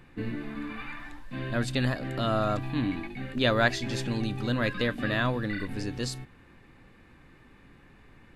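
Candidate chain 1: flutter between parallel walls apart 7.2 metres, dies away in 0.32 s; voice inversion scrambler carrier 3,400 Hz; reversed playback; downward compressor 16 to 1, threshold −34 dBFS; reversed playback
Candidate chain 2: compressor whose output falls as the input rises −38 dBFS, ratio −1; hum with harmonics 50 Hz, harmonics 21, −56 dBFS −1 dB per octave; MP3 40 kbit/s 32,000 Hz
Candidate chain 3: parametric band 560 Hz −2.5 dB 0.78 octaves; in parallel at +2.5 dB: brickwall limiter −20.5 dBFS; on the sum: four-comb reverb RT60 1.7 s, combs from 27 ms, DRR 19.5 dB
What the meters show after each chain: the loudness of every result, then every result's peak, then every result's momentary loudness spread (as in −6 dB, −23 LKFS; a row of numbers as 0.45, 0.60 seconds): −35.5, −38.0, −24.0 LKFS; −24.0, −21.5, −7.0 dBFS; 15, 14, 9 LU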